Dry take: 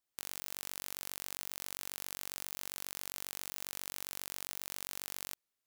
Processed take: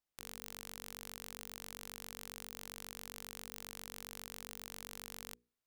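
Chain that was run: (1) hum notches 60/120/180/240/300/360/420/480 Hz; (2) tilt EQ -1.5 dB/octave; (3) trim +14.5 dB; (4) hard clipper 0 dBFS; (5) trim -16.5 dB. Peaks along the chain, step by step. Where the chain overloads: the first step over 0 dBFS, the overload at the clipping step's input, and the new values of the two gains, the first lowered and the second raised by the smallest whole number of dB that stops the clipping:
-14.0 dBFS, -18.5 dBFS, -4.0 dBFS, -4.0 dBFS, -20.5 dBFS; nothing clips

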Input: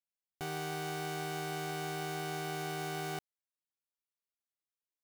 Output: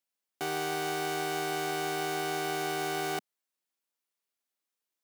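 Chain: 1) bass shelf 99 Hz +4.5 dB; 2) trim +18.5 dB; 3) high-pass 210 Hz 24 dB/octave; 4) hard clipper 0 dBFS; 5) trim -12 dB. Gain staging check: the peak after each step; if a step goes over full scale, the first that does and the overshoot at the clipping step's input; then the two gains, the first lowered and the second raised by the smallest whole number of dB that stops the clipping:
-27.5 dBFS, -9.0 dBFS, -6.0 dBFS, -6.0 dBFS, -18.0 dBFS; nothing clips

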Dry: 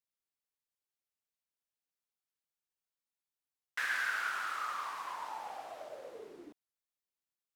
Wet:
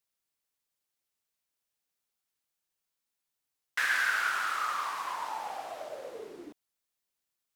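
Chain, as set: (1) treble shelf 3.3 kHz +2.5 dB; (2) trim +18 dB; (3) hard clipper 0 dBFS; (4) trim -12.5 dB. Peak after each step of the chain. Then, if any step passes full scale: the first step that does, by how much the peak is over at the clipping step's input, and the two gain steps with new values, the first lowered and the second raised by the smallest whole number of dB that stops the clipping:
-22.5 dBFS, -4.5 dBFS, -4.5 dBFS, -17.0 dBFS; nothing clips

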